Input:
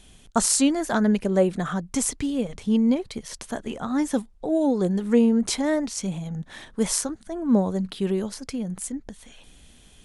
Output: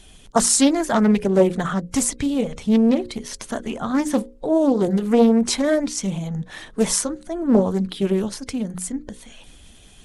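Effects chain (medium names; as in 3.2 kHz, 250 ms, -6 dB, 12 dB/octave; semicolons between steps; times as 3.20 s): coarse spectral quantiser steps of 15 dB; hum notches 60/120/180/240/300/360/420/480/540 Hz; loudspeaker Doppler distortion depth 0.42 ms; trim +5 dB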